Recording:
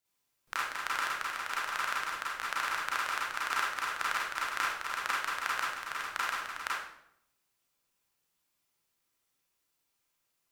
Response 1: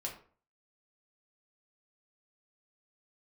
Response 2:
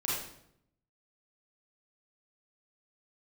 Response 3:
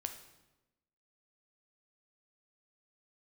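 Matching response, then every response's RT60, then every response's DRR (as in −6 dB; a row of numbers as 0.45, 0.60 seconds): 2; 0.45, 0.75, 1.0 seconds; −1.5, −7.0, 6.0 decibels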